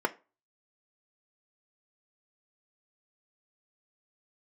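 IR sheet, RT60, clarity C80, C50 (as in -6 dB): 0.30 s, 26.0 dB, 20.5 dB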